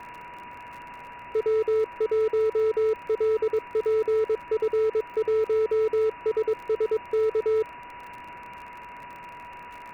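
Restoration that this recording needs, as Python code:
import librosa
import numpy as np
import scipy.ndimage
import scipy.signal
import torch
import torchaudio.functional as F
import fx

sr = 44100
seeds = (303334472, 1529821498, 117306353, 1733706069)

y = fx.fix_declip(x, sr, threshold_db=-20.0)
y = fx.fix_declick_ar(y, sr, threshold=6.5)
y = fx.notch(y, sr, hz=970.0, q=30.0)
y = fx.noise_reduce(y, sr, print_start_s=9.38, print_end_s=9.88, reduce_db=29.0)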